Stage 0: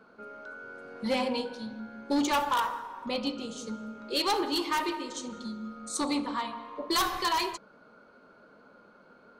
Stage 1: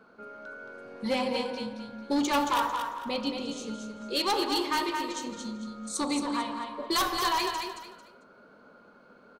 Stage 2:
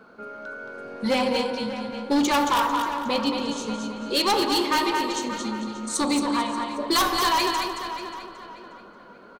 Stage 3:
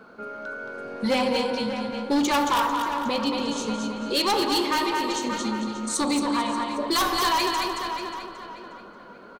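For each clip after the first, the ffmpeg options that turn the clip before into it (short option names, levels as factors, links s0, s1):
-af "aecho=1:1:223|446|669:0.501|0.135|0.0365"
-filter_complex "[0:a]volume=15.8,asoftclip=hard,volume=0.0631,asplit=2[s0][s1];[s1]adelay=584,lowpass=f=3200:p=1,volume=0.299,asplit=2[s2][s3];[s3]adelay=584,lowpass=f=3200:p=1,volume=0.34,asplit=2[s4][s5];[s5]adelay=584,lowpass=f=3200:p=1,volume=0.34,asplit=2[s6][s7];[s7]adelay=584,lowpass=f=3200:p=1,volume=0.34[s8];[s0][s2][s4][s6][s8]amix=inputs=5:normalize=0,volume=2.11"
-af "alimiter=limit=0.106:level=0:latency=1:release=66,volume=1.26"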